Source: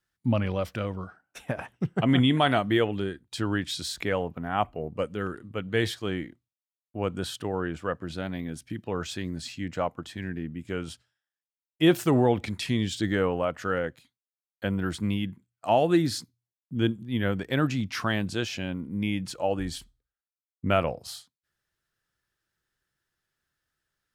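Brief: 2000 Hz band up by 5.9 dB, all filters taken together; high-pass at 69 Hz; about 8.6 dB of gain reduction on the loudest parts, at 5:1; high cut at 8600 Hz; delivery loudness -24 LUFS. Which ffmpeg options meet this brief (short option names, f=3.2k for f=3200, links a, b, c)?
-af "highpass=69,lowpass=8.6k,equalizer=f=2k:t=o:g=7.5,acompressor=threshold=-25dB:ratio=5,volume=8dB"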